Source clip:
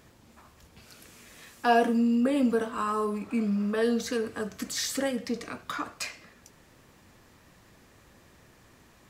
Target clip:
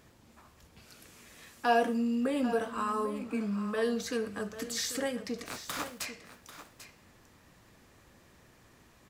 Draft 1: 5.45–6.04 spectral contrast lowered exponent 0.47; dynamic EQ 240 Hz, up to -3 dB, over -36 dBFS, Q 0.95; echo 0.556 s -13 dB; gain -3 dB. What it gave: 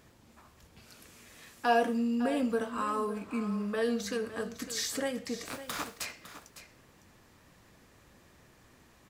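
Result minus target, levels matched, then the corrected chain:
echo 0.236 s early
5.45–6.04 spectral contrast lowered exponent 0.47; dynamic EQ 240 Hz, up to -3 dB, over -36 dBFS, Q 0.95; echo 0.792 s -13 dB; gain -3 dB

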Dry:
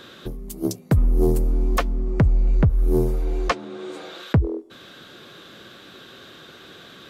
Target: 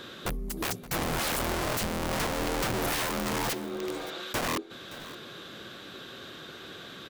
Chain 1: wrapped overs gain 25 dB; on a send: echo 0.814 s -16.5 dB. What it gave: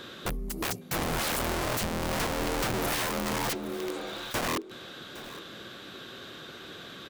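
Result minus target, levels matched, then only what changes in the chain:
echo 0.242 s late
change: echo 0.572 s -16.5 dB

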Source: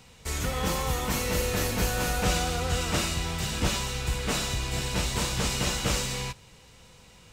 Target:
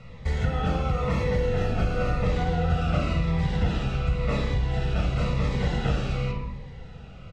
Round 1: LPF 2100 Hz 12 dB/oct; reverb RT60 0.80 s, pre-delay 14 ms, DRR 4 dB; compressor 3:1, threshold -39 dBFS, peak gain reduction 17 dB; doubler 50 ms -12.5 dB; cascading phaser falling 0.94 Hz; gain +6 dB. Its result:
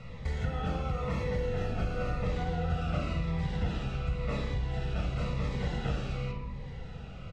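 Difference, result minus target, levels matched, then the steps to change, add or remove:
compressor: peak gain reduction +7 dB
change: compressor 3:1, threshold -28.5 dBFS, peak gain reduction 10 dB

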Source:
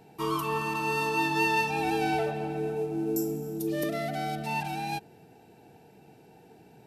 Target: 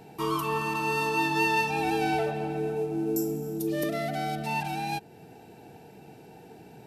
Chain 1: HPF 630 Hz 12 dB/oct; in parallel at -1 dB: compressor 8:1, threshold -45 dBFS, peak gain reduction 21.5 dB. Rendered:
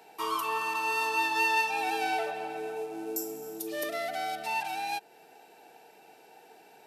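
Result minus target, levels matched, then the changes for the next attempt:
500 Hz band -3.5 dB
remove: HPF 630 Hz 12 dB/oct

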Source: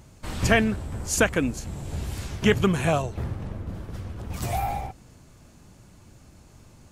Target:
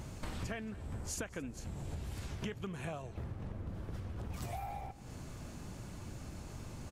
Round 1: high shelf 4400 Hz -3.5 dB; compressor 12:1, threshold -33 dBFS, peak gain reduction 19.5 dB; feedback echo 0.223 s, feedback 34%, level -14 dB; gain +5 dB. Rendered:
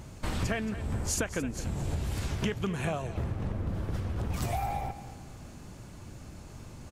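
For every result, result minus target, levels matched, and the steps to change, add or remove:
compressor: peak gain reduction -9.5 dB; echo-to-direct +7 dB
change: compressor 12:1, threshold -43.5 dBFS, peak gain reduction 29 dB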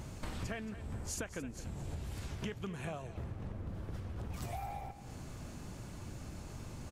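echo-to-direct +7 dB
change: feedback echo 0.223 s, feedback 34%, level -21 dB

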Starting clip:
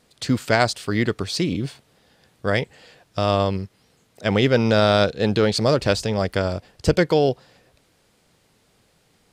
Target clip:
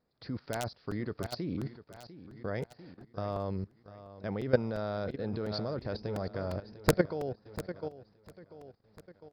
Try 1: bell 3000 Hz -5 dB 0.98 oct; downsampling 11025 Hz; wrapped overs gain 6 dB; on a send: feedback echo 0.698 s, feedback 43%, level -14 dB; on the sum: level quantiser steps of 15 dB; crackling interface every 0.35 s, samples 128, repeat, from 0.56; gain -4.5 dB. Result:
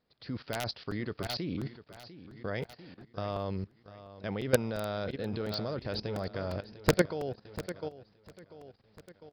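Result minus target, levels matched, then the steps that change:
4000 Hz band +5.0 dB
change: bell 3000 Hz -16 dB 0.98 oct

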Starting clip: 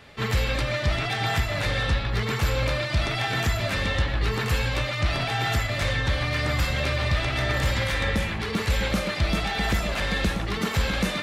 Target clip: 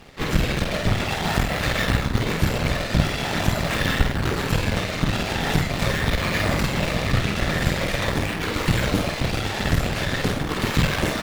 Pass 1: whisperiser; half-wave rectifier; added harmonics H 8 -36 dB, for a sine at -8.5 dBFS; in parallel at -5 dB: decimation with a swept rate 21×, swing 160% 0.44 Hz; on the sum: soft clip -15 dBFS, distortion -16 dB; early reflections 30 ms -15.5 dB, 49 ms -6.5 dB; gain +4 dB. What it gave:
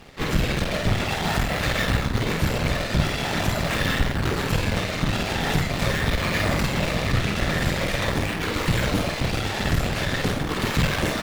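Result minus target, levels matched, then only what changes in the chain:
soft clip: distortion +17 dB
change: soft clip -4 dBFS, distortion -33 dB

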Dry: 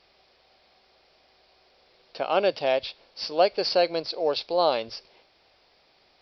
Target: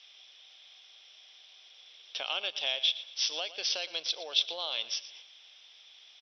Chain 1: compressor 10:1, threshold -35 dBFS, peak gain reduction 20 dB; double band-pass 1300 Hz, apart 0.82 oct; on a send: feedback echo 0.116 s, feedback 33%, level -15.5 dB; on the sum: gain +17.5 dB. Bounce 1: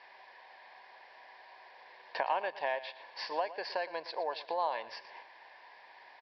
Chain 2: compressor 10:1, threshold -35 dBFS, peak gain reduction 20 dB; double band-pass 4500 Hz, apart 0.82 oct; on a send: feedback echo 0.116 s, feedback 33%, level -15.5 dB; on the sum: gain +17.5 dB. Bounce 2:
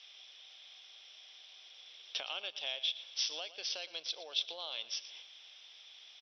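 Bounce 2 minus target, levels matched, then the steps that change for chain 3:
compressor: peak gain reduction +7 dB
change: compressor 10:1, threshold -27 dBFS, peak gain reduction 12.5 dB

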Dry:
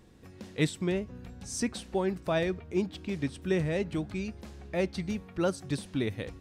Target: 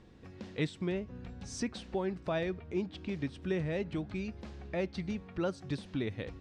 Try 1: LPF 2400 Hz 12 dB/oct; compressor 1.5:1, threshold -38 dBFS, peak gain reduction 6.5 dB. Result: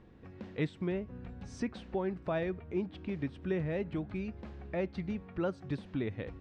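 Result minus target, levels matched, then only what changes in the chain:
4000 Hz band -6.5 dB
change: LPF 4800 Hz 12 dB/oct

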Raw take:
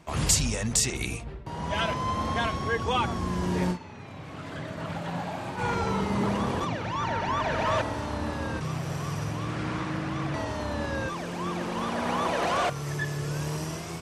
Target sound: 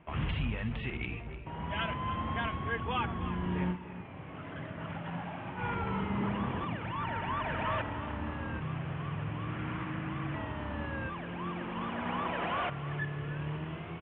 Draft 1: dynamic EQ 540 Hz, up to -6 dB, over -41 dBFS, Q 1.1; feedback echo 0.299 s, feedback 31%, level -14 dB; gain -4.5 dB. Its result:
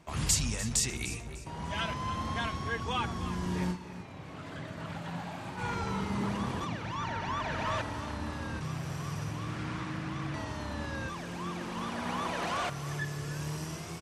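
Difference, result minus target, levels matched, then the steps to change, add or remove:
4000 Hz band +4.5 dB
add after dynamic EQ: steep low-pass 3200 Hz 72 dB/oct

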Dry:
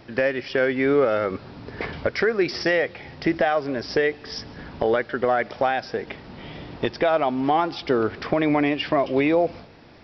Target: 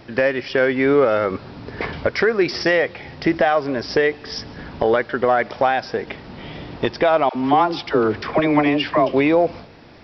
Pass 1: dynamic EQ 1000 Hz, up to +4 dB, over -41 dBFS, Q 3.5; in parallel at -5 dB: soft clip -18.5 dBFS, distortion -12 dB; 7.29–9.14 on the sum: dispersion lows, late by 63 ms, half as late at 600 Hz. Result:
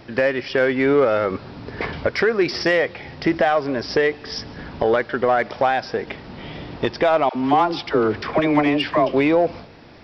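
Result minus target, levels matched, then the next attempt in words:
soft clip: distortion +12 dB
dynamic EQ 1000 Hz, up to +4 dB, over -41 dBFS, Q 3.5; in parallel at -5 dB: soft clip -9.5 dBFS, distortion -24 dB; 7.29–9.14 on the sum: dispersion lows, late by 63 ms, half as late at 600 Hz

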